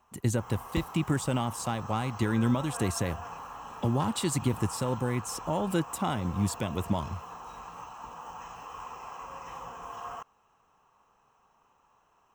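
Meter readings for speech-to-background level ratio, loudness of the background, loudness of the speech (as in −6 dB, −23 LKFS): 12.0 dB, −42.5 LKFS, −30.5 LKFS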